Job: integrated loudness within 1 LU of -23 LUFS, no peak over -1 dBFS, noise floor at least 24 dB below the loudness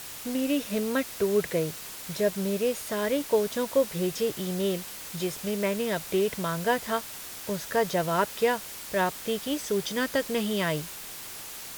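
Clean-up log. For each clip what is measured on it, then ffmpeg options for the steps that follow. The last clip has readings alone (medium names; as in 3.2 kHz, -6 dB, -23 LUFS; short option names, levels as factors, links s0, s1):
noise floor -41 dBFS; noise floor target -53 dBFS; loudness -28.5 LUFS; peak level -11.0 dBFS; loudness target -23.0 LUFS
-> -af "afftdn=nr=12:nf=-41"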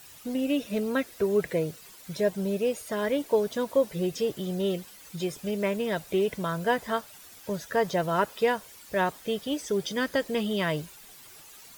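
noise floor -50 dBFS; noise floor target -53 dBFS
-> -af "afftdn=nr=6:nf=-50"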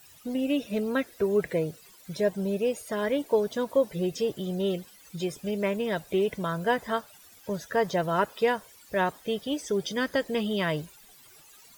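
noise floor -54 dBFS; loudness -29.0 LUFS; peak level -11.5 dBFS; loudness target -23.0 LUFS
-> -af "volume=2"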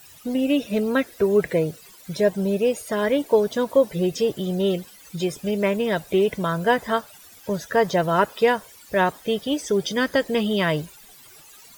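loudness -23.0 LUFS; peak level -5.5 dBFS; noise floor -48 dBFS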